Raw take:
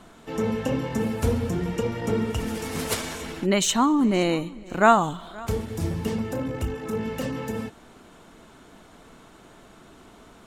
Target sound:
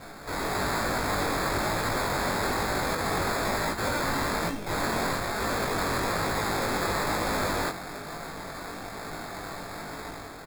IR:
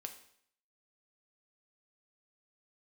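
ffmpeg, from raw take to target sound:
-af "aecho=1:1:6.9:0.6,crystalizer=i=8.5:c=0,acompressor=threshold=0.112:ratio=10,alimiter=limit=0.168:level=0:latency=1:release=119,aeval=exprs='(mod(21.1*val(0)+1,2)-1)/21.1':c=same,dynaudnorm=f=120:g=7:m=2.11,acrusher=samples=15:mix=1:aa=0.000001,flanger=delay=18.5:depth=3.2:speed=1.1"

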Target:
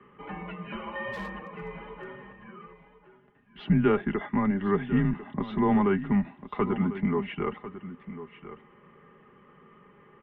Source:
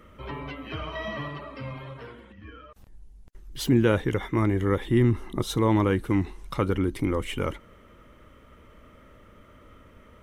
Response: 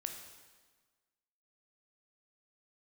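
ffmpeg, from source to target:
-filter_complex "[0:a]highpass=f=170:t=q:w=0.5412,highpass=f=170:t=q:w=1.307,lowpass=f=3100:t=q:w=0.5176,lowpass=f=3100:t=q:w=0.7071,lowpass=f=3100:t=q:w=1.932,afreqshift=-96,aecho=1:1:1047:0.211,acrossover=split=120|2200[s0][s1][s2];[s1]acontrast=24[s3];[s0][s3][s2]amix=inputs=3:normalize=0,asplit=3[s4][s5][s6];[s4]afade=t=out:st=1.12:d=0.02[s7];[s5]aeval=exprs='0.0562*(abs(mod(val(0)/0.0562+3,4)-2)-1)':c=same,afade=t=in:st=1.12:d=0.02,afade=t=out:st=2.04:d=0.02[s8];[s6]afade=t=in:st=2.04:d=0.02[s9];[s7][s8][s9]amix=inputs=3:normalize=0,aecho=1:1:4.9:0.63,volume=0.473"

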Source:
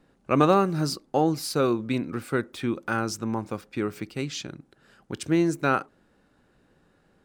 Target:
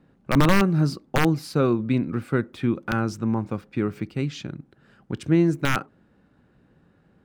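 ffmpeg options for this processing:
-af "highpass=f=120:p=1,aeval=exprs='(mod(3.98*val(0)+1,2)-1)/3.98':c=same,bass=f=250:g=11,treble=f=4000:g=-9"

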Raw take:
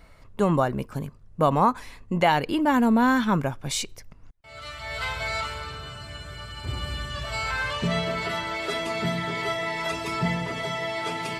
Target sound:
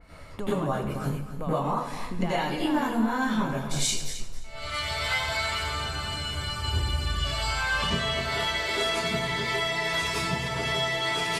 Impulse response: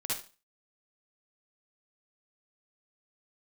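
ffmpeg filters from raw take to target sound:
-filter_complex "[0:a]asubboost=boost=3.5:cutoff=55,acompressor=threshold=0.0251:ratio=8,aecho=1:1:266|532|798:0.266|0.0532|0.0106[s0];[1:a]atrim=start_sample=2205,asetrate=26901,aresample=44100[s1];[s0][s1]afir=irnorm=-1:irlink=0,adynamicequalizer=threshold=0.0158:dfrequency=3100:dqfactor=0.7:tfrequency=3100:tqfactor=0.7:attack=5:release=100:ratio=0.375:range=2:mode=boostabove:tftype=highshelf"

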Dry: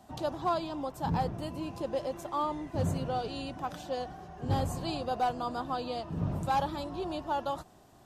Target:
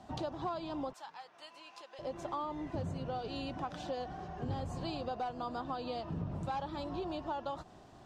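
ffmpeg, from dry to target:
-filter_complex "[0:a]lowpass=5500,acompressor=threshold=0.0126:ratio=6,asettb=1/sr,asplit=3[s0][s1][s2];[s0]atrim=end=0.934[s3];[s1]atrim=start=0.93:end=1.99,asetpts=PTS-STARTPTS,afade=t=in:d=0.004:c=qsin,afade=t=out:st=1.056:d=0.004:c=qsin,highpass=1300[s4];[s2]atrim=start=1.986[s5];[s3][s4]acrossfade=d=0.004:c1=hsin:c2=qsin[s6];[s6][s5]acrossfade=d=0.004:c1=qsin:c2=hsin,volume=1.33"

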